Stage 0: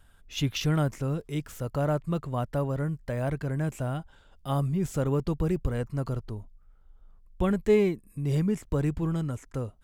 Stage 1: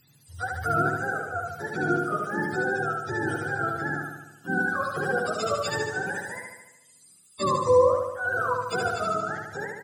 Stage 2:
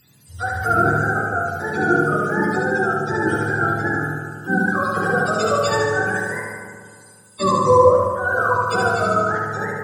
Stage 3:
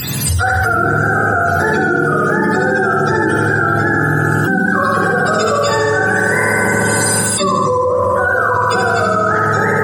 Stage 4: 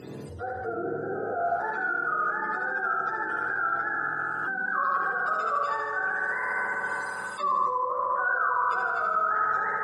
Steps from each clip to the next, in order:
frequency axis turned over on the octave scale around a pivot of 460 Hz; on a send: repeating echo 74 ms, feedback 59%, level −3 dB; on the sum: level +1.5 dB
convolution reverb RT60 2.0 s, pre-delay 7 ms, DRR 1 dB; level +5 dB
envelope flattener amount 100%; level −5.5 dB
brickwall limiter −8 dBFS, peak gain reduction 6.5 dB; band-pass filter sweep 430 Hz → 1,200 Hz, 0:01.20–0:01.82; level −5.5 dB

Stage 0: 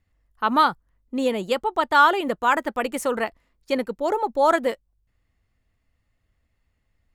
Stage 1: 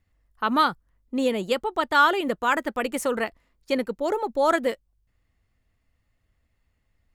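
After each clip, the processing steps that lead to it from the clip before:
dynamic equaliser 870 Hz, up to −5 dB, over −31 dBFS, Q 1.5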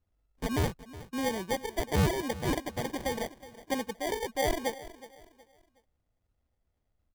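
decimation without filtering 33×
repeating echo 368 ms, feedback 33%, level −17 dB
level −7.5 dB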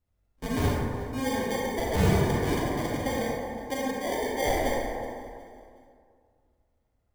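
convolution reverb RT60 2.2 s, pre-delay 28 ms, DRR −4.5 dB
level −2 dB

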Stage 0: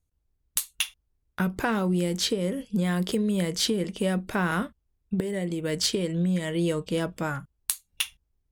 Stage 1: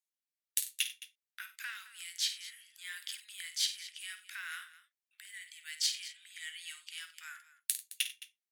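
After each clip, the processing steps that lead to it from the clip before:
Butterworth high-pass 1,700 Hz 36 dB per octave
on a send: multi-tap delay 52/93/216 ms −10.5/−17.5/−16.5 dB
on the sum: level −5.5 dB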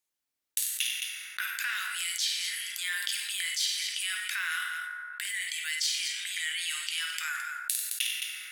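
downward expander −60 dBFS
feedback delay network reverb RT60 1.1 s, low-frequency decay 0.9×, high-frequency decay 0.5×, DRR 6 dB
envelope flattener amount 70%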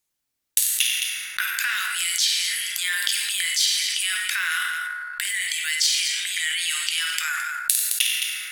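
bass and treble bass +7 dB, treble +2 dB
transient designer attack +2 dB, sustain +7 dB
in parallel at −10.5 dB: slack as between gear wheels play −42.5 dBFS
on the sum: level +4.5 dB

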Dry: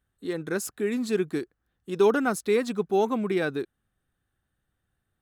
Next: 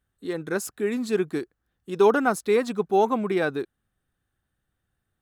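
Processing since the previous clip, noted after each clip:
dynamic equaliser 850 Hz, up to +6 dB, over −35 dBFS, Q 0.88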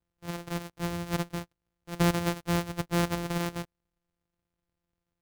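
samples sorted by size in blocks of 256 samples
level −7 dB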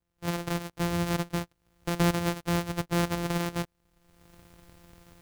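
camcorder AGC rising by 35 dB per second

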